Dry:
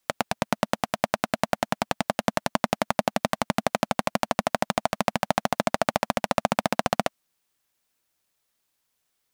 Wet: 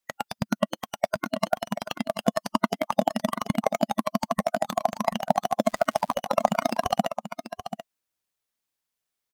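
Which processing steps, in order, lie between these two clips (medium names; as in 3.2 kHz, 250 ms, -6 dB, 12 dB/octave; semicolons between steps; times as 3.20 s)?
spectral noise reduction 13 dB; 5.64–6.13 s: crackle 360 per s -45 dBFS; on a send: delay 735 ms -11 dB; on the sum: trim +4 dB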